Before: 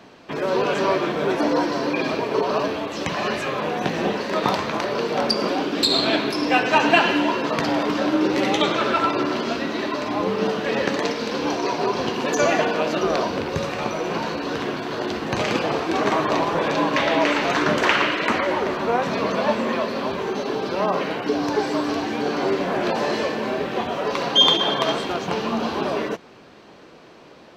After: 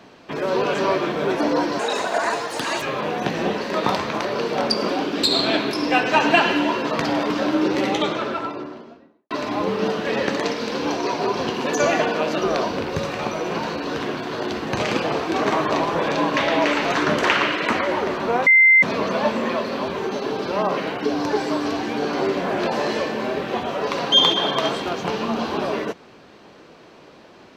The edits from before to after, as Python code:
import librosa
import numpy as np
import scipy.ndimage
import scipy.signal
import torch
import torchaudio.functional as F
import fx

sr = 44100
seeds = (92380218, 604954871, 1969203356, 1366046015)

y = fx.studio_fade_out(x, sr, start_s=8.22, length_s=1.68)
y = fx.edit(y, sr, fx.speed_span(start_s=1.79, length_s=1.62, speed=1.58),
    fx.insert_tone(at_s=19.06, length_s=0.36, hz=2080.0, db=-9.0), tone=tone)